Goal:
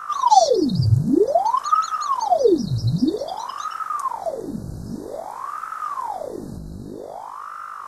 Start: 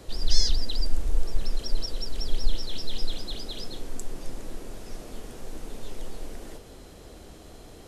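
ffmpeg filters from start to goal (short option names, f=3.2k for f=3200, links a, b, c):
-af "aeval=exprs='val(0)+0.0224*(sin(2*PI*50*n/s)+sin(2*PI*2*50*n/s)/2+sin(2*PI*3*50*n/s)/3+sin(2*PI*4*50*n/s)/4+sin(2*PI*5*50*n/s)/5)':c=same,afftfilt=real='re*(1-between(b*sr/4096,1600,3900))':imag='im*(1-between(b*sr/4096,1600,3900))':win_size=4096:overlap=0.75,aeval=exprs='val(0)*sin(2*PI*700*n/s+700*0.85/0.52*sin(2*PI*0.52*n/s))':c=same,volume=3dB"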